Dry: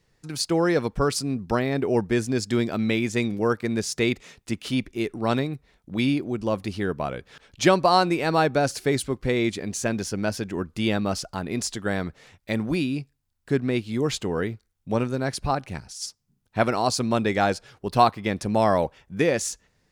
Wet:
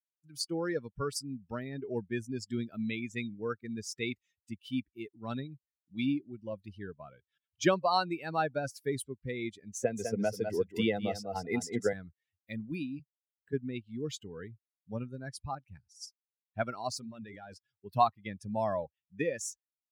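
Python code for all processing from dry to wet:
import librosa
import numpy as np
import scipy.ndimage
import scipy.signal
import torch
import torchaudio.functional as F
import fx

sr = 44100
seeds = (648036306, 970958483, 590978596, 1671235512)

y = fx.chain(x, sr, fx.small_body(hz=(480.0, 720.0, 2000.0), ring_ms=30, db=12),
    fx.echo_single(ms=201, db=-5.5),
    fx.band_squash(depth_pct=100), at=(9.77, 11.93))
y = fx.chain(y, sr, fx.doubler(ms=12.0, db=-7),
    fx.band_squash(depth_pct=100), at=(12.99, 13.53))
y = fx.chain(y, sr, fx.hum_notches(base_hz=60, count=8),
    fx.leveller(passes=1),
    fx.level_steps(step_db=14), at=(16.91, 17.54))
y = fx.bin_expand(y, sr, power=2.0)
y = scipy.signal.sosfilt(scipy.signal.butter(2, 80.0, 'highpass', fs=sr, output='sos'), y)
y = F.gain(torch.from_numpy(y), -5.5).numpy()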